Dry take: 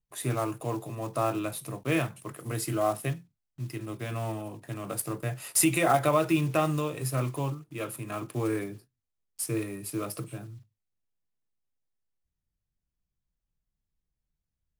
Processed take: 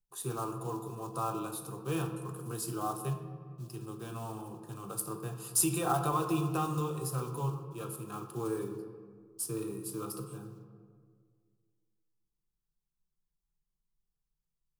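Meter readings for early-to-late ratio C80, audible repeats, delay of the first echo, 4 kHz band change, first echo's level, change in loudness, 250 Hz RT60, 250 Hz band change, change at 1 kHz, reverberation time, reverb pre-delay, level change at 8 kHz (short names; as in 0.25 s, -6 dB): 9.5 dB, none, none, -6.0 dB, none, -5.5 dB, 2.3 s, -5.5 dB, -4.0 dB, 1.9 s, 3 ms, -3.0 dB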